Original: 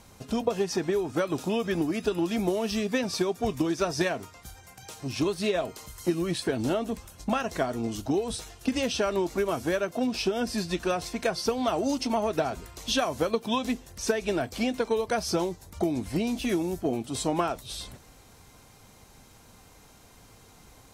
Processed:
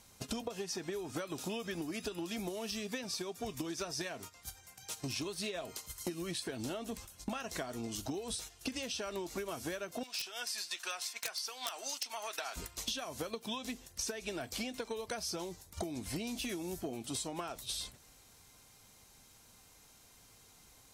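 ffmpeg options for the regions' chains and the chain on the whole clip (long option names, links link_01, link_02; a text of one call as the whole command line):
ffmpeg -i in.wav -filter_complex "[0:a]asettb=1/sr,asplit=3[link_01][link_02][link_03];[link_01]atrim=end=10.034[link_04];[link_02]atrim=start=10.03:end=12.56,asetpts=PTS-STARTPTS,afade=type=in:duration=0.004:curve=qsin,afade=type=out:start_time=2.526:duration=0.004:curve=qsin,highpass=1100,aeval=exprs='(mod(11.9*val(0)+1,2)-1)/11.9':channel_layout=same[link_05];[link_03]atrim=start=12.556[link_06];[link_04][link_05]acrossfade=duration=0.004:curve1=hsin:curve2=qsin[link_07];[link_07][link_06]acrossfade=duration=0.004:curve1=qsin:curve2=hsin,agate=range=-12dB:threshold=-41dB:ratio=16:detection=peak,highshelf=frequency=2100:gain=10,acompressor=threshold=-36dB:ratio=16" out.wav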